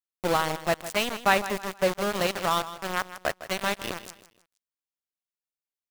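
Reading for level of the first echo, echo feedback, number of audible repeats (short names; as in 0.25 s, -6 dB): -14.0 dB, 33%, 3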